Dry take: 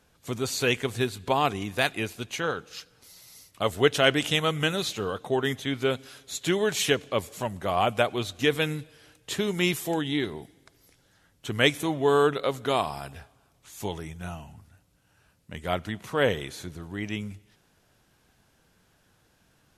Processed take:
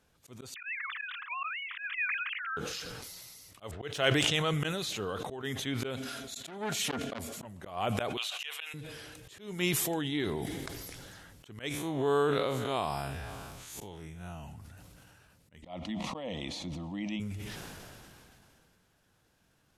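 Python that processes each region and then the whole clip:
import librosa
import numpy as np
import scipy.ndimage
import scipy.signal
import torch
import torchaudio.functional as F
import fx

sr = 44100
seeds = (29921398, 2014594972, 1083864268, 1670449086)

y = fx.chain(x, sr, fx.sine_speech(),
    fx.ellip_highpass(hz=1200.0, order=4, stop_db=70),
    fx.peak_eq(hz=1900.0, db=10.5, octaves=1.3), at=(0.54, 2.57))
y = fx.chain(y, sr, fx.median_filter(points=3),
    fx.env_lowpass(base_hz=1700.0, full_db=-19.0),
    fx.peak_eq(hz=240.0, db=-10.5, octaves=0.3), at=(3.71, 4.54))
y = fx.chain(y, sr, fx.small_body(hz=(240.0, 670.0, 1400.0), ring_ms=100, db=14),
    fx.transformer_sat(knee_hz=1800.0), at=(6.0, 7.45))
y = fx.chain(y, sr, fx.highpass(hz=780.0, slope=24),
    fx.peak_eq(hz=2800.0, db=14.0, octaves=0.42), at=(8.17, 8.74))
y = fx.chain(y, sr, fx.spec_blur(span_ms=90.0),
    fx.pre_swell(db_per_s=54.0), at=(11.69, 14.44))
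y = fx.chain(y, sr, fx.lowpass(hz=3900.0, slope=12),
    fx.fixed_phaser(hz=410.0, stages=6),
    fx.env_flatten(amount_pct=50), at=(15.62, 17.2))
y = fx.auto_swell(y, sr, attack_ms=258.0)
y = fx.sustainer(y, sr, db_per_s=21.0)
y = F.gain(torch.from_numpy(y), -6.0).numpy()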